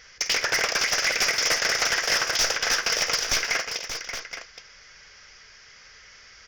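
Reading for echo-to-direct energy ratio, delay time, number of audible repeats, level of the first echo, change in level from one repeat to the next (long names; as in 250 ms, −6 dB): −6.0 dB, 50 ms, 4, −12.5 dB, repeats not evenly spaced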